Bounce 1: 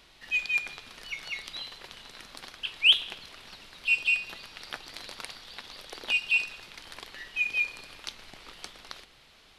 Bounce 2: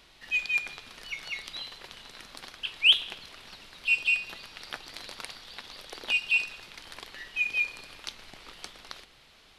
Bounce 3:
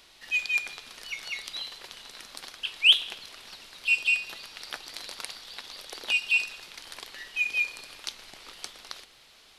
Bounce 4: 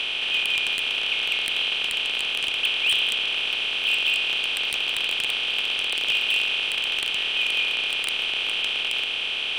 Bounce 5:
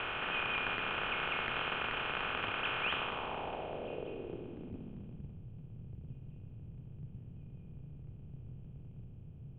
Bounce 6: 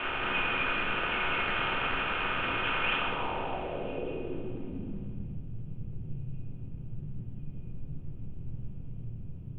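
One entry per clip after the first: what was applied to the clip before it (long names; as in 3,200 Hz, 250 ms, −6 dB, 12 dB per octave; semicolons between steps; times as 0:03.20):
no processing that can be heard
bass and treble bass −6 dB, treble +6 dB
compressor on every frequency bin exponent 0.2; low-pass filter 1,400 Hz 6 dB per octave; wave folding −14 dBFS
sub-octave generator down 2 octaves, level +1 dB; high-frequency loss of the air 330 metres; low-pass filter sweep 1,400 Hz → 130 Hz, 0:02.90–0:05.43
rectangular room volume 240 cubic metres, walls furnished, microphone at 2.7 metres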